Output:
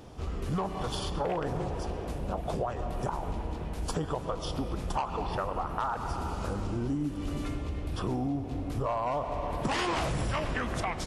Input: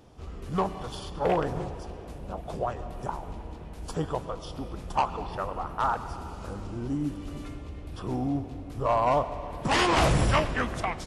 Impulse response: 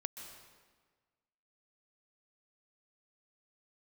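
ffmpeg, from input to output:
-af "alimiter=limit=-20.5dB:level=0:latency=1:release=38,acompressor=threshold=-34dB:ratio=6,volume=6dB"

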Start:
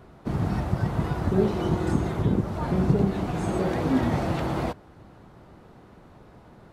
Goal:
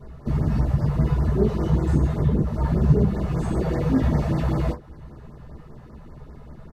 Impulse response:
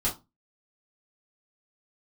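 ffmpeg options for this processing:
-filter_complex "[0:a]asplit=2[a][b];[b]acompressor=threshold=-36dB:ratio=6,volume=-2.5dB[c];[a][c]amix=inputs=2:normalize=0,asplit=2[d][e];[e]adelay=14,volume=-11dB[f];[d][f]amix=inputs=2:normalize=0[g];[1:a]atrim=start_sample=2205,asetrate=61740,aresample=44100[h];[g][h]afir=irnorm=-1:irlink=0,afftfilt=real='re*(1-between(b*sr/1024,260*pow(3300/260,0.5+0.5*sin(2*PI*5.1*pts/sr))/1.41,260*pow(3300/260,0.5+0.5*sin(2*PI*5.1*pts/sr))*1.41))':imag='im*(1-between(b*sr/1024,260*pow(3300/260,0.5+0.5*sin(2*PI*5.1*pts/sr))/1.41,260*pow(3300/260,0.5+0.5*sin(2*PI*5.1*pts/sr))*1.41))':win_size=1024:overlap=0.75,volume=-8dB"

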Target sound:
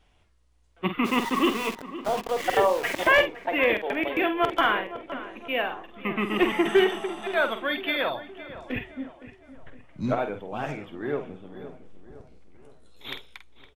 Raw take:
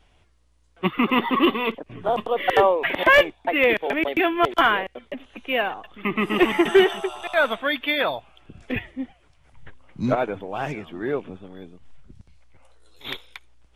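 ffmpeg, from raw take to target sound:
-filter_complex "[0:a]asplit=2[a][b];[b]adelay=48,volume=-9dB[c];[a][c]amix=inputs=2:normalize=0,asplit=3[d][e][f];[d]afade=t=out:st=1.04:d=0.02[g];[e]aeval=exprs='val(0)*gte(abs(val(0)),0.0422)':c=same,afade=t=in:st=1.04:d=0.02,afade=t=out:st=3.11:d=0.02[h];[f]afade=t=in:st=3.11:d=0.02[i];[g][h][i]amix=inputs=3:normalize=0,asplit=2[j][k];[k]adelay=513,lowpass=f=2k:p=1,volume=-14dB,asplit=2[l][m];[m]adelay=513,lowpass=f=2k:p=1,volume=0.5,asplit=2[n][o];[o]adelay=513,lowpass=f=2k:p=1,volume=0.5,asplit=2[p][q];[q]adelay=513,lowpass=f=2k:p=1,volume=0.5,asplit=2[r][s];[s]adelay=513,lowpass=f=2k:p=1,volume=0.5[t];[j][l][n][p][r][t]amix=inputs=6:normalize=0,volume=-4.5dB"

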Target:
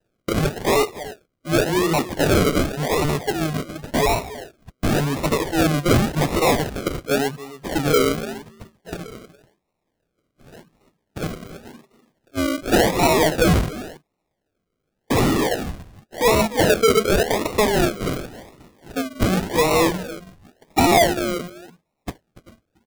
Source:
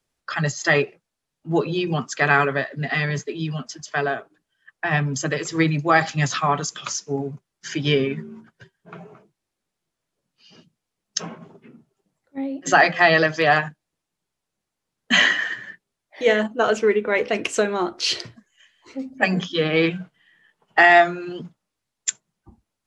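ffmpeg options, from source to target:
-filter_complex "[0:a]asplit=2[a][b];[b]highpass=f=720:p=1,volume=24dB,asoftclip=type=tanh:threshold=-3dB[c];[a][c]amix=inputs=2:normalize=0,lowpass=f=1.5k:p=1,volume=-6dB,aecho=1:1:286:0.158,acrusher=samples=39:mix=1:aa=0.000001:lfo=1:lforange=23.4:lforate=0.9,volume=-4dB"

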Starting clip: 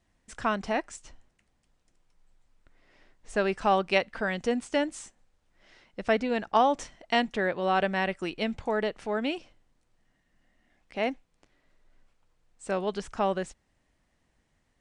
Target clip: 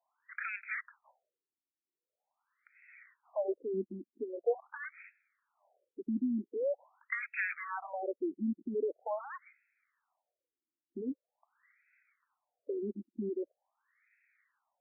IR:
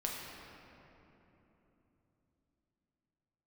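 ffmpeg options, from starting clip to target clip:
-filter_complex "[0:a]acrossover=split=600[a][b];[a]acrusher=bits=5:mix=0:aa=0.5[c];[b]acompressor=threshold=-38dB:ratio=10[d];[c][d]amix=inputs=2:normalize=0,lowpass=f=2.4k:t=q:w=4.4,afftfilt=real='re*between(b*sr/1024,250*pow(1900/250,0.5+0.5*sin(2*PI*0.44*pts/sr))/1.41,250*pow(1900/250,0.5+0.5*sin(2*PI*0.44*pts/sr))*1.41)':imag='im*between(b*sr/1024,250*pow(1900/250,0.5+0.5*sin(2*PI*0.44*pts/sr))/1.41,250*pow(1900/250,0.5+0.5*sin(2*PI*0.44*pts/sr))*1.41)':win_size=1024:overlap=0.75"

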